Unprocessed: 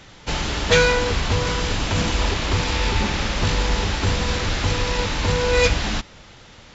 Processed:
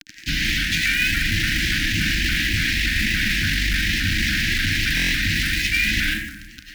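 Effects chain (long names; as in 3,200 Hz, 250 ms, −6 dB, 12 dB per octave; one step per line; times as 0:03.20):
bit reduction 6 bits
on a send at −1.5 dB: octave-band graphic EQ 125/250/500/1,000/2,000 Hz −4/−7/+6/+10/+8 dB + convolution reverb RT60 1.1 s, pre-delay 55 ms
on the sum: upward compression, threshold −33 dBFS
low-pass filter 6,000 Hz 24 dB per octave
asymmetric clip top −16.5 dBFS
low-shelf EQ 140 Hz −5.5 dB
floating-point word with a short mantissa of 2 bits
Chebyshev band-stop filter 320–1,600 Hz, order 5
reversed playback
downward compressor, threshold −25 dBFS, peak gain reduction 10.5 dB
reversed playback
buffer that repeats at 0:04.95, samples 1,024, times 6
pitch modulation by a square or saw wave saw up 3.5 Hz, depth 100 cents
level +7.5 dB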